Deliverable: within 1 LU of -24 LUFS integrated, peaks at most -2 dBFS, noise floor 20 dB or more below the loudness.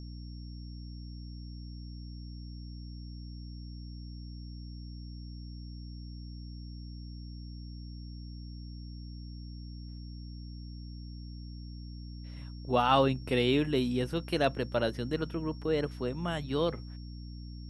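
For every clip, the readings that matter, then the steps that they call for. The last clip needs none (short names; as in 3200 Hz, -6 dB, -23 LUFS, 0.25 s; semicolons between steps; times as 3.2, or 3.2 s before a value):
hum 60 Hz; harmonics up to 300 Hz; hum level -41 dBFS; steady tone 5500 Hz; tone level -56 dBFS; loudness -36.0 LUFS; peak -11.5 dBFS; loudness target -24.0 LUFS
-> notches 60/120/180/240/300 Hz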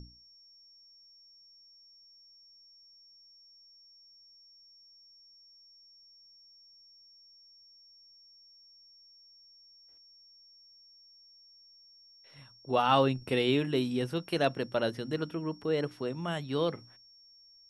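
hum none; steady tone 5500 Hz; tone level -56 dBFS
-> notch 5500 Hz, Q 30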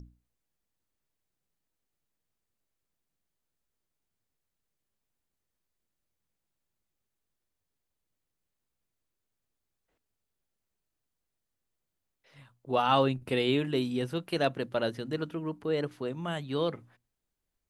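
steady tone none; loudness -30.5 LUFS; peak -12.0 dBFS; loudness target -24.0 LUFS
-> gain +6.5 dB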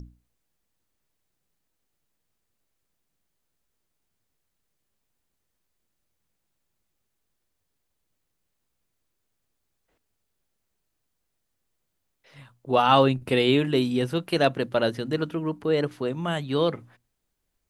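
loudness -24.0 LUFS; peak -5.5 dBFS; noise floor -78 dBFS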